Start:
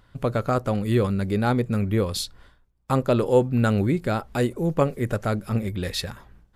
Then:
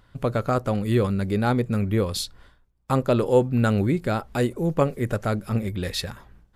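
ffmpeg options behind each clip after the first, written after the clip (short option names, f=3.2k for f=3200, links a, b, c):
-af anull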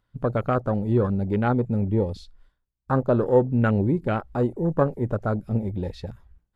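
-filter_complex "[0:a]acrossover=split=6500[a][b];[b]acompressor=threshold=-54dB:ratio=4:attack=1:release=60[c];[a][c]amix=inputs=2:normalize=0,afwtdn=0.0316"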